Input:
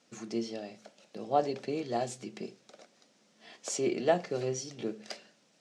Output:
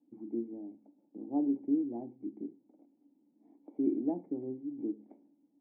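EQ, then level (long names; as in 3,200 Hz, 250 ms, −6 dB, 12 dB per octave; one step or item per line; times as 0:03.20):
formant resonators in series u
parametric band 280 Hz +13 dB 0.4 octaves
0.0 dB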